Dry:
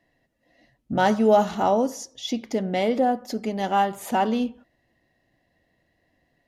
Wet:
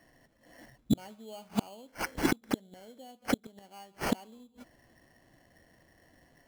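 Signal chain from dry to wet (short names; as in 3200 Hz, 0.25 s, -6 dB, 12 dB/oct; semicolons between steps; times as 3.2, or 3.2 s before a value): sample-rate reducer 3700 Hz, jitter 0%; flipped gate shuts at -21 dBFS, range -35 dB; gain +6 dB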